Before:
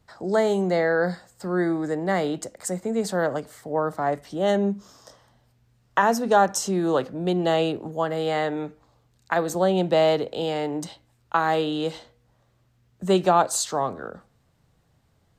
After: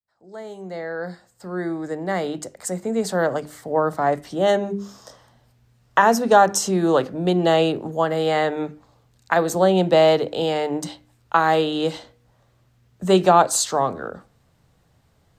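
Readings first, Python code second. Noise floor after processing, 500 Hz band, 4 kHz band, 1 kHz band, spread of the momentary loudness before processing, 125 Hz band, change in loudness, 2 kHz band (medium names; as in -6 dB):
-62 dBFS, +3.5 dB, +4.5 dB, +4.0 dB, 11 LU, +2.5 dB, +3.5 dB, +3.0 dB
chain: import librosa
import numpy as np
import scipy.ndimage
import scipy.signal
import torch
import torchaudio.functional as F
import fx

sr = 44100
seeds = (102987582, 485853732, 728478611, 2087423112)

y = fx.fade_in_head(x, sr, length_s=3.75)
y = fx.hum_notches(y, sr, base_hz=50, count=8)
y = y * librosa.db_to_amplitude(4.5)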